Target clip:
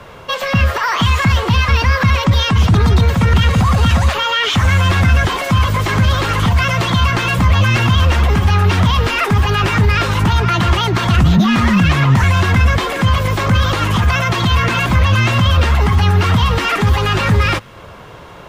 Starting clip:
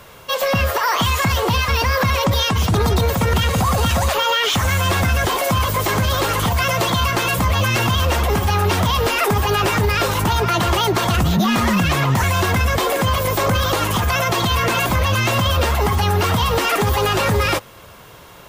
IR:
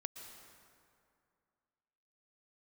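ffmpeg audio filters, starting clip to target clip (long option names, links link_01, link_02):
-filter_complex "[0:a]aemphasis=mode=reproduction:type=75fm,acrossover=split=270|1200[link_01][link_02][link_03];[link_02]acompressor=threshold=-32dB:ratio=10[link_04];[link_01][link_04][link_03]amix=inputs=3:normalize=0,volume=6.5dB"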